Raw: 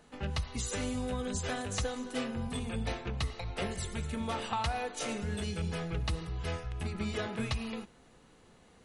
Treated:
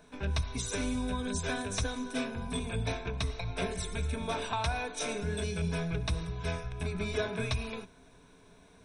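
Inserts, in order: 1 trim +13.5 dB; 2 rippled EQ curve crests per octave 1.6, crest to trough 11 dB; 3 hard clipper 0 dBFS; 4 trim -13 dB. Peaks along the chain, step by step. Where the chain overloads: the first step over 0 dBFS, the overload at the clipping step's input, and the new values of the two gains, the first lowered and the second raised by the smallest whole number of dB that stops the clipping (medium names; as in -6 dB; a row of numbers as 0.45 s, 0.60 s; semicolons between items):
-5.0 dBFS, -5.5 dBFS, -5.5 dBFS, -18.5 dBFS; nothing clips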